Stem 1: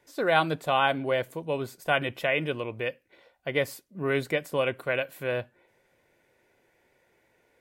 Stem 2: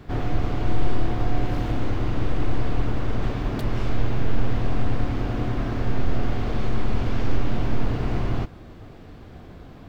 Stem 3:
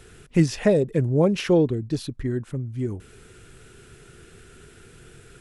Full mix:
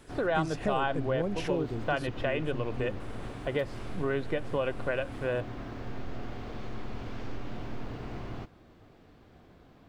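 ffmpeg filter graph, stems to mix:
-filter_complex "[0:a]lowpass=2800,equalizer=f=2200:t=o:w=0.24:g=-12,volume=1.19[s0];[1:a]lowshelf=f=140:g=-7.5,volume=0.299[s1];[2:a]volume=0.398[s2];[s0][s1][s2]amix=inputs=3:normalize=0,acompressor=threshold=0.0398:ratio=2.5"

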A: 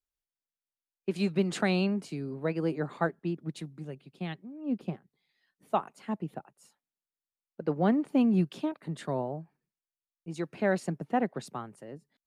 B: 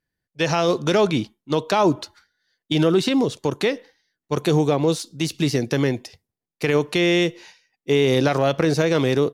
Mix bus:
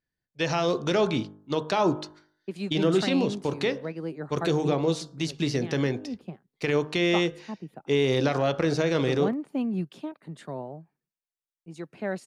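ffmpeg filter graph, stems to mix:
-filter_complex "[0:a]adelay=1400,volume=0.631[s0];[1:a]lowpass=7000,bandreject=f=51:t=h:w=4,bandreject=f=102:t=h:w=4,bandreject=f=153:t=h:w=4,bandreject=f=204:t=h:w=4,bandreject=f=255:t=h:w=4,bandreject=f=306:t=h:w=4,bandreject=f=357:t=h:w=4,bandreject=f=408:t=h:w=4,bandreject=f=459:t=h:w=4,bandreject=f=510:t=h:w=4,bandreject=f=561:t=h:w=4,bandreject=f=612:t=h:w=4,bandreject=f=663:t=h:w=4,bandreject=f=714:t=h:w=4,bandreject=f=765:t=h:w=4,bandreject=f=816:t=h:w=4,bandreject=f=867:t=h:w=4,bandreject=f=918:t=h:w=4,bandreject=f=969:t=h:w=4,bandreject=f=1020:t=h:w=4,bandreject=f=1071:t=h:w=4,bandreject=f=1122:t=h:w=4,bandreject=f=1173:t=h:w=4,bandreject=f=1224:t=h:w=4,bandreject=f=1275:t=h:w=4,bandreject=f=1326:t=h:w=4,bandreject=f=1377:t=h:w=4,bandreject=f=1428:t=h:w=4,bandreject=f=1479:t=h:w=4,bandreject=f=1530:t=h:w=4,bandreject=f=1581:t=h:w=4,bandreject=f=1632:t=h:w=4,bandreject=f=1683:t=h:w=4,bandreject=f=1734:t=h:w=4,volume=0.562[s1];[s0][s1]amix=inputs=2:normalize=0"

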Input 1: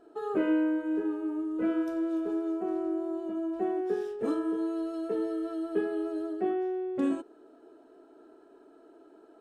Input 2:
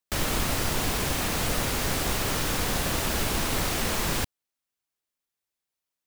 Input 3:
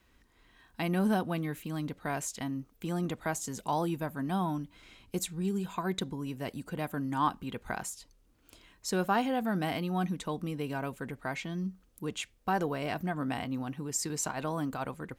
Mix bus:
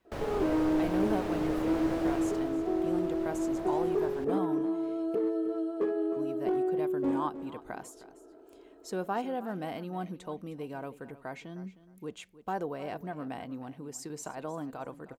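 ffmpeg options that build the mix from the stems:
-filter_complex "[0:a]lowshelf=f=500:g=3,asoftclip=type=hard:threshold=0.0708,adelay=50,volume=0.376,asplit=2[s0][s1];[s1]volume=0.237[s2];[1:a]lowpass=f=1600:p=1,volume=0.266,afade=t=out:st=2.08:d=0.48:silence=0.375837[s3];[2:a]volume=0.299,asplit=3[s4][s5][s6];[s4]atrim=end=5.15,asetpts=PTS-STARTPTS,afade=t=out:st=5.146:d=0.004:c=hsin[s7];[s5]atrim=start=5.15:end=6.16,asetpts=PTS-STARTPTS,volume=0[s8];[s6]atrim=start=6.16,asetpts=PTS-STARTPTS,afade=t=in:d=0.004:c=hsin[s9];[s7][s8][s9]concat=n=3:v=0:a=1,asplit=2[s10][s11];[s11]volume=0.158[s12];[s2][s12]amix=inputs=2:normalize=0,aecho=0:1:311|622|933:1|0.19|0.0361[s13];[s0][s3][s10][s13]amix=inputs=4:normalize=0,equalizer=f=510:t=o:w=2.2:g=9"

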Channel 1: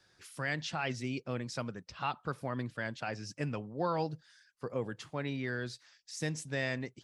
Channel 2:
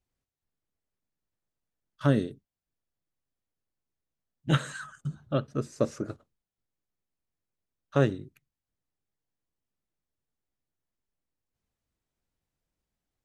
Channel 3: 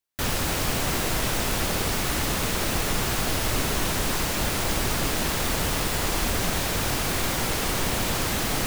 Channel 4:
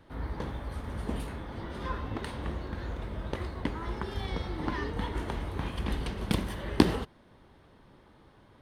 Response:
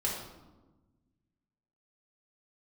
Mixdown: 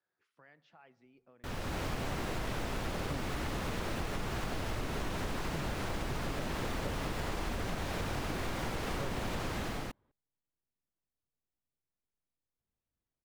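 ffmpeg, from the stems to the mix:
-filter_complex "[0:a]lowpass=f=1200:p=1,acompressor=threshold=0.0126:ratio=6,highpass=f=700:p=1,volume=0.224,asplit=2[s0][s1];[s1]volume=0.0944[s2];[1:a]acompressor=threshold=0.0251:ratio=2,adelay=1050,volume=0.501[s3];[2:a]dynaudnorm=f=190:g=5:m=3.76,adelay=1250,volume=0.211[s4];[3:a]adelay=1500,volume=0.133[s5];[4:a]atrim=start_sample=2205[s6];[s2][s6]afir=irnorm=-1:irlink=0[s7];[s0][s3][s4][s5][s7]amix=inputs=5:normalize=0,lowpass=f=2000:p=1,acompressor=threshold=0.0251:ratio=6"

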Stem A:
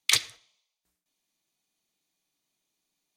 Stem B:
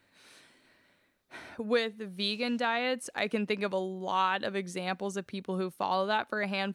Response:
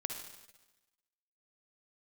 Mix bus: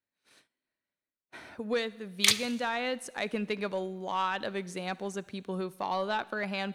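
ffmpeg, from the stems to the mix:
-filter_complex "[0:a]adelay=2150,volume=0.75,asplit=2[s0][s1];[s1]volume=0.237[s2];[1:a]asoftclip=type=tanh:threshold=0.112,volume=0.75,asplit=2[s3][s4];[s4]volume=0.188[s5];[2:a]atrim=start_sample=2205[s6];[s2][s5]amix=inputs=2:normalize=0[s7];[s7][s6]afir=irnorm=-1:irlink=0[s8];[s0][s3][s8]amix=inputs=3:normalize=0,agate=range=0.0562:threshold=0.00158:ratio=16:detection=peak"

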